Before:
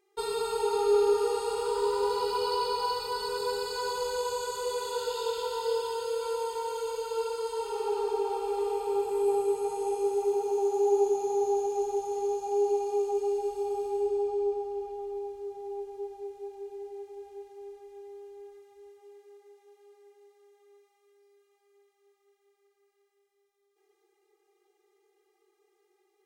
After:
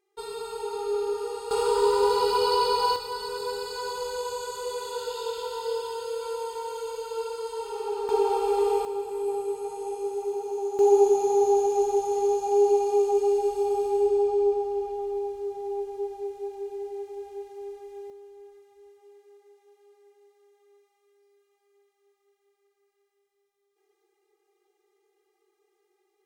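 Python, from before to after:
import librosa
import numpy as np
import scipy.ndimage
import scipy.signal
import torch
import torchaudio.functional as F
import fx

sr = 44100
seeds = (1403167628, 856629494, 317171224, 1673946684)

y = fx.gain(x, sr, db=fx.steps((0.0, -4.5), (1.51, 6.0), (2.96, -0.5), (8.09, 6.5), (8.85, -2.5), (10.79, 6.0), (18.1, -1.0)))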